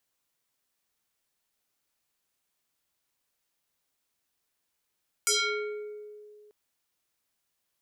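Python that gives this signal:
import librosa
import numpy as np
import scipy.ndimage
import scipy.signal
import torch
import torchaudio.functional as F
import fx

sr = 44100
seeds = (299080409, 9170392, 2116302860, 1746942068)

y = fx.fm2(sr, length_s=1.24, level_db=-21.0, carrier_hz=420.0, ratio=4.31, index=5.7, index_s=1.09, decay_s=2.28, shape='exponential')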